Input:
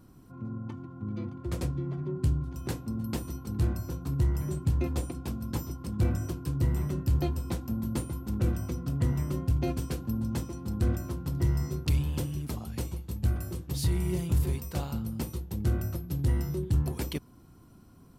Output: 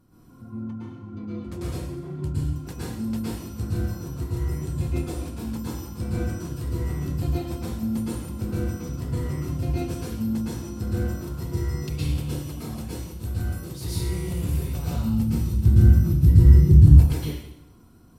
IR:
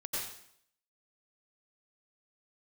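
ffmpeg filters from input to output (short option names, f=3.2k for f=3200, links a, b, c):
-filter_complex "[0:a]asettb=1/sr,asplit=3[a][b][c];[a]atrim=end=14.384[d];[b]atrim=start=14.38:end=16.84,asetpts=PTS-STARTPTS,afade=t=in:d=0.004:c=qsin,afade=t=out:st=2.456:d=0.004:c=qsin,asubboost=boost=11.5:cutoff=230[e];[c]atrim=start=16.836[f];[d][e]acrossfade=d=0.004:c1=hsin:c2=qsin[g];[g][f]acrossfade=d=0.004:c1=qsin:c2=hsin[h];[1:a]atrim=start_sample=2205,asetrate=35280,aresample=44100[i];[h][i]afir=irnorm=-1:irlink=0,volume=-2dB"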